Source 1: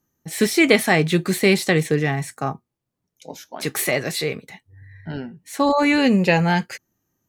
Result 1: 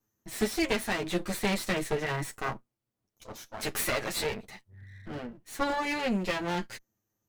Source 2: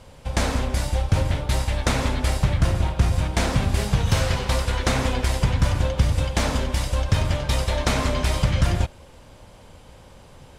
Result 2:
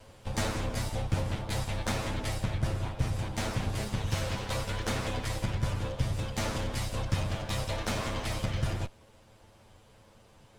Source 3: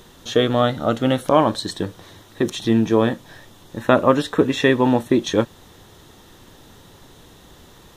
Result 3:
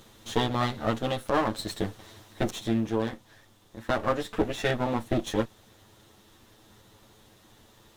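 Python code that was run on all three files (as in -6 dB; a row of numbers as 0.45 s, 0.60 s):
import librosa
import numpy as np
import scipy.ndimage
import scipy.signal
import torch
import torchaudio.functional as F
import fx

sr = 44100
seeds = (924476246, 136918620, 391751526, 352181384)

y = fx.lower_of_two(x, sr, delay_ms=9.2)
y = fx.rider(y, sr, range_db=4, speed_s=0.5)
y = y * 10.0 ** (-8.0 / 20.0)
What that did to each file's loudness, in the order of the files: -12.0 LU, -10.0 LU, -10.0 LU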